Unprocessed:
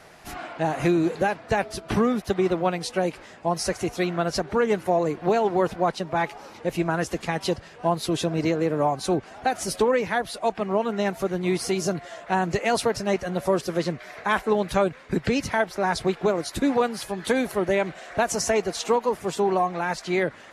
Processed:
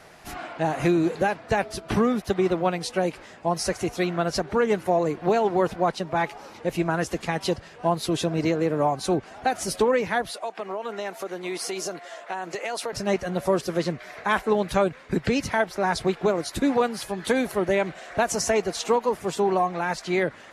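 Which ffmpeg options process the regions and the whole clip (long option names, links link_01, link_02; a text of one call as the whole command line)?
ffmpeg -i in.wav -filter_complex "[0:a]asettb=1/sr,asplit=3[link_01][link_02][link_03];[link_01]atrim=end=10.324[link_04];[link_02]atrim=start=10.32:end=12.93,asetpts=PTS-STARTPTS,afade=type=in:duration=0.004:curve=qsin,afade=type=out:start_time=2.606:duration=0.004:curve=qsin,highpass=400,acompressor=threshold=-26dB:ratio=6:attack=3.2:release=140:knee=1:detection=peak[link_05];[link_03]atrim=start=12.926[link_06];[link_04][link_05]acrossfade=duration=0.004:curve1=hsin:curve2=qsin[link_07];[link_07][link_06]acrossfade=duration=0.004:curve1=qsin:curve2=hsin" out.wav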